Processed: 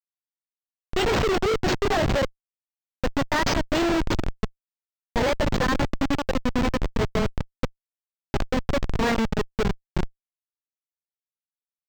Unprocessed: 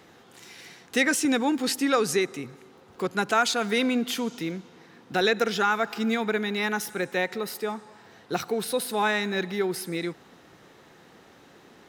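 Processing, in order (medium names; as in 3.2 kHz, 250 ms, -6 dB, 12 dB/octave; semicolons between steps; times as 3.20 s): pitch bend over the whole clip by +7.5 st ending unshifted; dynamic bell 5.8 kHz, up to +4 dB, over -42 dBFS, Q 1.4; Schmitt trigger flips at -23 dBFS; decimation joined by straight lines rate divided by 4×; trim +8 dB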